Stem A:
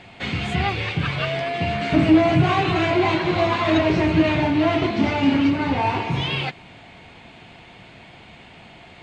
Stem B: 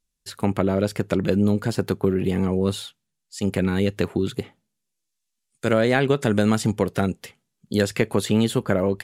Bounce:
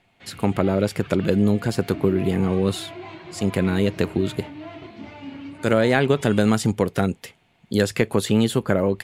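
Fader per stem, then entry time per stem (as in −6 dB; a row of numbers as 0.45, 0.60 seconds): −18.5, +1.0 decibels; 0.00, 0.00 seconds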